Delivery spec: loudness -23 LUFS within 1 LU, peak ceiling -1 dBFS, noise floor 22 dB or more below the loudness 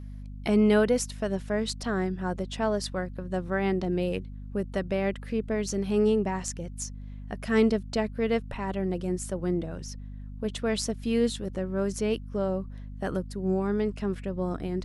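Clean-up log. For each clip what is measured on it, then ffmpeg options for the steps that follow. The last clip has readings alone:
hum 50 Hz; harmonics up to 250 Hz; hum level -37 dBFS; loudness -29.0 LUFS; peak -10.0 dBFS; loudness target -23.0 LUFS
-> -af "bandreject=f=50:t=h:w=6,bandreject=f=100:t=h:w=6,bandreject=f=150:t=h:w=6,bandreject=f=200:t=h:w=6,bandreject=f=250:t=h:w=6"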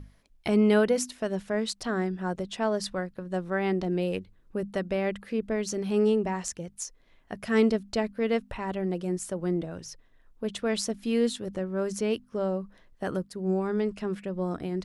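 hum none; loudness -29.0 LUFS; peak -10.0 dBFS; loudness target -23.0 LUFS
-> -af "volume=6dB"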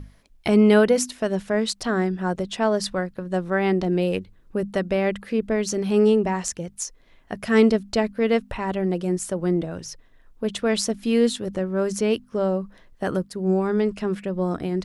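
loudness -23.0 LUFS; peak -4.0 dBFS; noise floor -55 dBFS

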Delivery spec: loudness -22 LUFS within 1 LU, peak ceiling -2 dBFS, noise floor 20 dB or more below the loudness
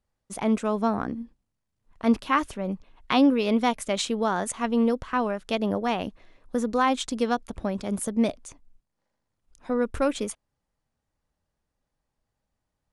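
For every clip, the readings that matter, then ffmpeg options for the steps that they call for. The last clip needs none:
loudness -26.0 LUFS; peak -8.5 dBFS; loudness target -22.0 LUFS
-> -af "volume=4dB"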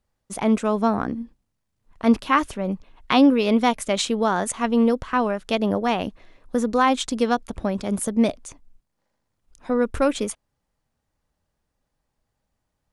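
loudness -22.0 LUFS; peak -4.5 dBFS; noise floor -78 dBFS

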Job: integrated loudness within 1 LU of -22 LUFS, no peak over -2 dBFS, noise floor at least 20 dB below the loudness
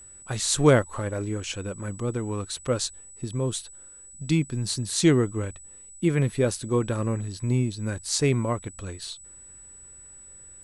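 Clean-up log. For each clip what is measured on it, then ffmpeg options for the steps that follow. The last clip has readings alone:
steady tone 7900 Hz; tone level -45 dBFS; loudness -26.0 LUFS; peak -5.5 dBFS; loudness target -22.0 LUFS
-> -af "bandreject=f=7.9k:w=30"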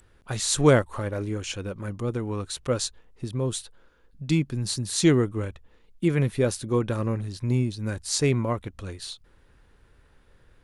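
steady tone none; loudness -26.5 LUFS; peak -5.5 dBFS; loudness target -22.0 LUFS
-> -af "volume=4.5dB,alimiter=limit=-2dB:level=0:latency=1"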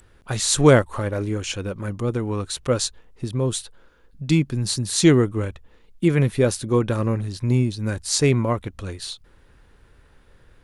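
loudness -22.0 LUFS; peak -2.0 dBFS; noise floor -54 dBFS

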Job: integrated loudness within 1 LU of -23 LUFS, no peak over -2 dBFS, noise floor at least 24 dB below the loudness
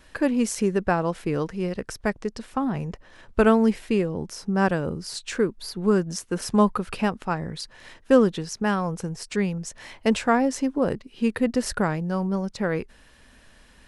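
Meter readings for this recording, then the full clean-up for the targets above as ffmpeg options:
loudness -25.0 LUFS; peak -4.5 dBFS; loudness target -23.0 LUFS
-> -af "volume=2dB"

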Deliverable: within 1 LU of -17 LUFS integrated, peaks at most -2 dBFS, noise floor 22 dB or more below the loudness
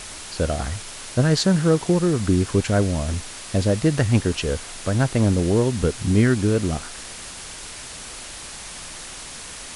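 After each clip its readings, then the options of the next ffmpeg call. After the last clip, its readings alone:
noise floor -37 dBFS; noise floor target -44 dBFS; loudness -21.5 LUFS; peak -6.5 dBFS; loudness target -17.0 LUFS
-> -af "afftdn=nr=7:nf=-37"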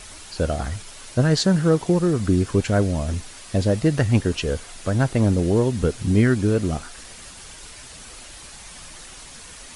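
noise floor -42 dBFS; noise floor target -44 dBFS
-> -af "afftdn=nr=6:nf=-42"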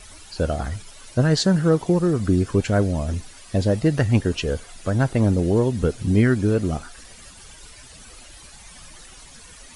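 noise floor -45 dBFS; loudness -21.5 LUFS; peak -7.0 dBFS; loudness target -17.0 LUFS
-> -af "volume=4.5dB"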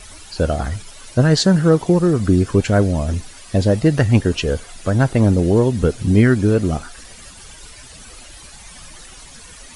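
loudness -17.0 LUFS; peak -2.5 dBFS; noise floor -40 dBFS

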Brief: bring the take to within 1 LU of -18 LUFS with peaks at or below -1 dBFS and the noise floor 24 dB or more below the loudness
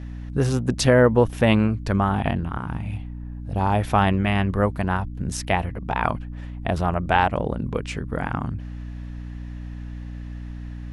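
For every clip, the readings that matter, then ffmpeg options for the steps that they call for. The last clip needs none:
hum 60 Hz; harmonics up to 300 Hz; hum level -31 dBFS; loudness -23.0 LUFS; peak -2.5 dBFS; loudness target -18.0 LUFS
-> -af "bandreject=f=60:t=h:w=6,bandreject=f=120:t=h:w=6,bandreject=f=180:t=h:w=6,bandreject=f=240:t=h:w=6,bandreject=f=300:t=h:w=6"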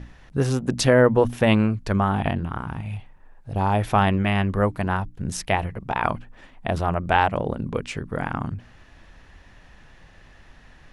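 hum none; loudness -23.0 LUFS; peak -3.5 dBFS; loudness target -18.0 LUFS
-> -af "volume=5dB,alimiter=limit=-1dB:level=0:latency=1"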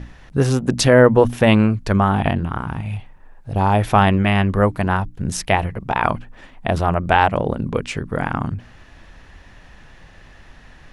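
loudness -18.5 LUFS; peak -1.0 dBFS; noise floor -46 dBFS

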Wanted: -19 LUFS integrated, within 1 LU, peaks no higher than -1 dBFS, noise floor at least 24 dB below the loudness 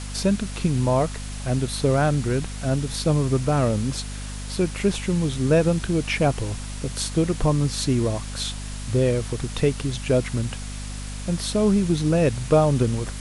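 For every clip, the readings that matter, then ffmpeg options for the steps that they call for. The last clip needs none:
hum 50 Hz; harmonics up to 250 Hz; hum level -31 dBFS; noise floor -33 dBFS; noise floor target -48 dBFS; loudness -23.5 LUFS; peak -6.5 dBFS; loudness target -19.0 LUFS
-> -af "bandreject=f=50:t=h:w=6,bandreject=f=100:t=h:w=6,bandreject=f=150:t=h:w=6,bandreject=f=200:t=h:w=6,bandreject=f=250:t=h:w=6"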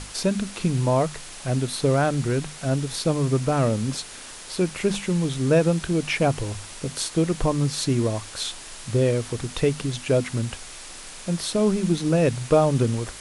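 hum none; noise floor -40 dBFS; noise floor target -48 dBFS
-> -af "afftdn=nr=8:nf=-40"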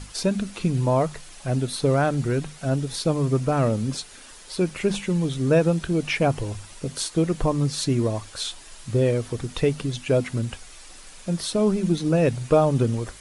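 noise floor -45 dBFS; noise floor target -48 dBFS
-> -af "afftdn=nr=6:nf=-45"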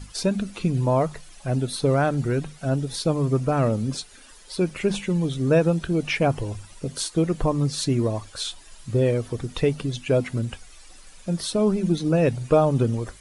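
noise floor -48 dBFS; loudness -24.0 LUFS; peak -7.5 dBFS; loudness target -19.0 LUFS
-> -af "volume=5dB"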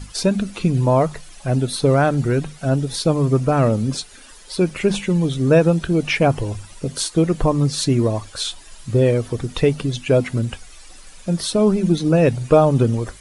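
loudness -19.0 LUFS; peak -2.5 dBFS; noise floor -43 dBFS

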